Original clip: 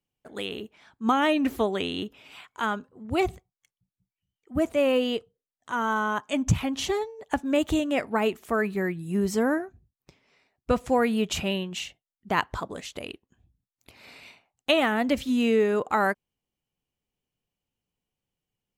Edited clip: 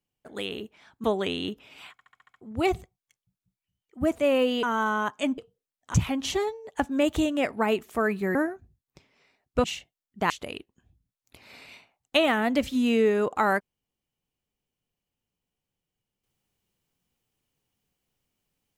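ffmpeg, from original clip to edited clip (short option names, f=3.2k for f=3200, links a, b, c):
-filter_complex "[0:a]asplit=15[a][b][c][d][e][f][g][h][i][j][k][l][m][n][o];[a]atrim=end=1.042[p];[b]atrim=start=1.578:end=2.532[q];[c]atrim=start=2.458:end=2.532[r];[d]atrim=start=2.458:end=2.532[s];[e]atrim=start=2.458:end=2.532[t];[f]atrim=start=2.458:end=2.532[u];[g]atrim=start=2.458:end=2.532[v];[h]atrim=start=2.458:end=2.532[w];[i]atrim=start=2.948:end=5.172[x];[j]atrim=start=5.728:end=6.482[y];[k]atrim=start=5.168:end=5.732[z];[l]atrim=start=6.478:end=8.892[aa];[m]atrim=start=9.468:end=10.762[ab];[n]atrim=start=11.728:end=12.392[ac];[o]atrim=start=12.838[ad];[p][q]acrossfade=d=0.004:c1=hsin:c2=hsin[ae];[ae][r]acrossfade=d=0.004:c1=hsin:c2=hsin[af];[af][s]acrossfade=d=0.004:c1=hsin:c2=hsin[ag];[ag][t]acrossfade=d=0.004:c1=hsin:c2=hsin[ah];[ah][u]acrossfade=d=0.004:c1=hsin:c2=hsin[ai];[ai][v]acrossfade=d=0.004:c1=hsin:c2=hsin[aj];[aj][w]acrossfade=d=0.004:c1=hsin:c2=hsin[ak];[ak][x]acrossfade=d=0.004:c1=hsin:c2=hsin[al];[al][y]acrossfade=d=0.004:c1=hsin:c2=hsin[am];[am][z]acrossfade=d=0.004:c1=hsin:c2=hsin[an];[an][aa]acrossfade=d=0.004:c1=hsin:c2=hsin[ao];[ao][ab]acrossfade=d=0.004:c1=hsin:c2=hsin[ap];[ap][ac]acrossfade=d=0.004:c1=hsin:c2=hsin[aq];[aq][ad]acrossfade=d=0.004:c1=hsin:c2=hsin"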